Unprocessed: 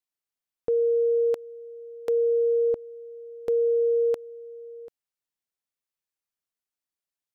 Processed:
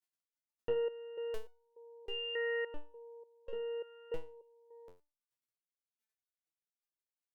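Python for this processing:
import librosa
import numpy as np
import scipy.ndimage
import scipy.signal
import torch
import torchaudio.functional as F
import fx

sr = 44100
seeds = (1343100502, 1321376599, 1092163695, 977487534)

y = fx.cheby_harmonics(x, sr, harmonics=(2, 3, 6), levels_db=(-13, -19, -14), full_scale_db=-18.5)
y = fx.level_steps(y, sr, step_db=19)
y = fx.resonator_held(y, sr, hz=3.4, low_hz=89.0, high_hz=730.0)
y = y * librosa.db_to_amplitude(17.0)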